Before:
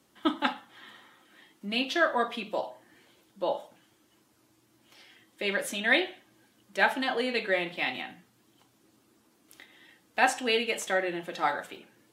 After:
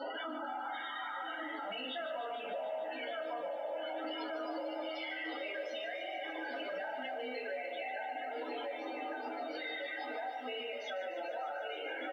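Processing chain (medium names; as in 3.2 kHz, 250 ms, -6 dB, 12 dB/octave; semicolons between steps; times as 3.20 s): one-bit delta coder 32 kbps, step -26 dBFS; high-pass 330 Hz 24 dB/octave; feedback delay 1146 ms, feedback 48%, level -10 dB; in parallel at +1.5 dB: level held to a coarse grid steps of 16 dB; on the sum: loudest bins only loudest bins 16; treble shelf 3.7 kHz -10 dB; comb 1.4 ms, depth 98%; simulated room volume 180 m³, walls furnished, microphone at 2.9 m; compression 6:1, threshold -28 dBFS, peak gain reduction 20 dB; peak limiter -28 dBFS, peak gain reduction 11 dB; bit-crushed delay 148 ms, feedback 80%, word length 11-bit, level -12 dB; trim -5 dB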